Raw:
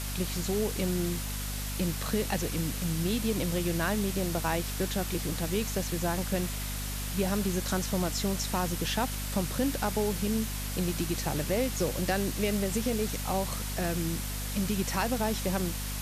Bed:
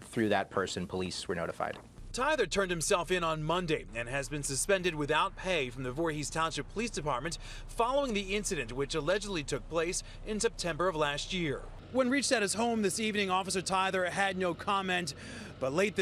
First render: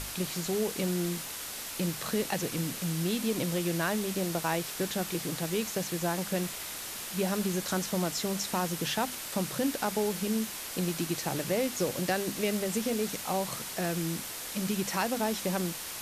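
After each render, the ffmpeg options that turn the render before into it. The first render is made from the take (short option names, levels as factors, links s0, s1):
-af "bandreject=f=50:t=h:w=6,bandreject=f=100:t=h:w=6,bandreject=f=150:t=h:w=6,bandreject=f=200:t=h:w=6,bandreject=f=250:t=h:w=6"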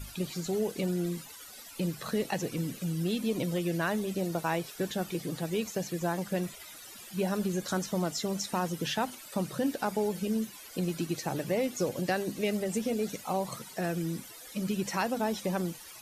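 -af "afftdn=nr=16:nf=-40"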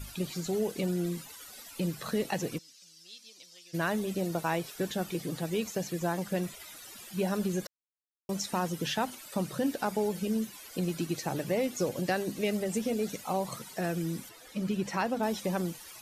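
-filter_complex "[0:a]asplit=3[s0][s1][s2];[s0]afade=t=out:st=2.57:d=0.02[s3];[s1]bandpass=f=5200:t=q:w=3.1,afade=t=in:st=2.57:d=0.02,afade=t=out:st=3.73:d=0.02[s4];[s2]afade=t=in:st=3.73:d=0.02[s5];[s3][s4][s5]amix=inputs=3:normalize=0,asettb=1/sr,asplit=3[s6][s7][s8];[s6]atrim=end=14.294[s9];[s7]atrim=start=14.29:end=15.23,asetpts=PTS-STARTPTS,afade=t=in:d=0.004:c=qsin,afade=t=out:st=0.936:d=0.004:c=qsin,aemphasis=mode=reproduction:type=cd[s10];[s8]atrim=start=15.226[s11];[s9][s10]acrossfade=d=0.004:c1=hsin:c2=qsin[s12];[s12][s11]acrossfade=d=0.004:c1=qsin:c2=hsin,asplit=3[s13][s14][s15];[s13]atrim=end=7.67,asetpts=PTS-STARTPTS,afade=t=out:st=7.666:d=0.004:c=hsin[s16];[s14]atrim=start=7.67:end=8.29,asetpts=PTS-STARTPTS,volume=0[s17];[s15]atrim=start=8.29,asetpts=PTS-STARTPTS,afade=t=in:d=0.004:c=hsin[s18];[s16][s17][s18]concat=n=3:v=0:a=1"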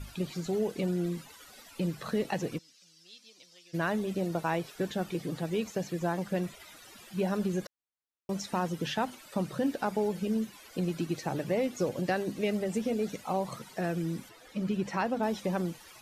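-af "aemphasis=mode=reproduction:type=cd"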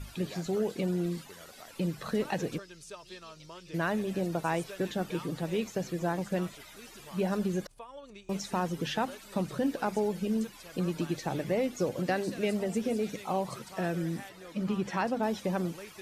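-filter_complex "[1:a]volume=0.133[s0];[0:a][s0]amix=inputs=2:normalize=0"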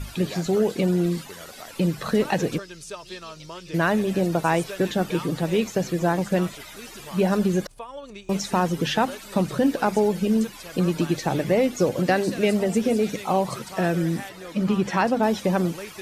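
-af "volume=2.82"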